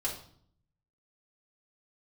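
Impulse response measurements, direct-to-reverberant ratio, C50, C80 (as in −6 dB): −5.0 dB, 7.0 dB, 11.5 dB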